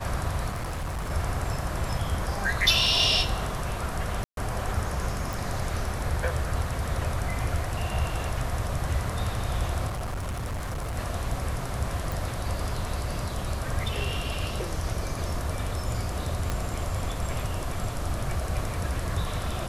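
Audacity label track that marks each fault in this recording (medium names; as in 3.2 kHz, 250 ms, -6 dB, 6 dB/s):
0.500000	1.110000	clipped -28 dBFS
4.240000	4.370000	dropout 132 ms
5.330000	5.330000	pop
9.870000	10.980000	clipped -28.5 dBFS
12.120000	12.120000	pop
16.500000	16.500000	pop -14 dBFS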